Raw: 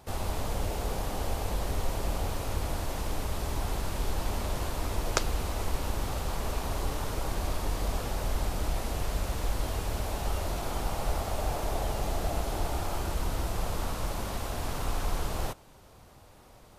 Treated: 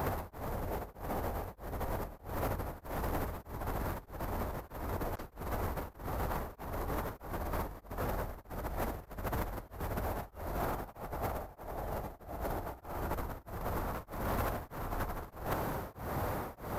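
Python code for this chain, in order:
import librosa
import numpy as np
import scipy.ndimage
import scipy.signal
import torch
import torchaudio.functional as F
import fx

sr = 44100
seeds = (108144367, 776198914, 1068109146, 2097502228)

y = fx.highpass(x, sr, hz=68.0, slope=6)
y = fx.band_shelf(y, sr, hz=5000.0, db=-13.0, octaves=2.3)
y = fx.over_compress(y, sr, threshold_db=-42.0, ratio=-0.5)
y = 10.0 ** (-39.0 / 20.0) * np.tanh(y / 10.0 ** (-39.0 / 20.0))
y = y * np.abs(np.cos(np.pi * 1.6 * np.arange(len(y)) / sr))
y = y * 10.0 ** (12.0 / 20.0)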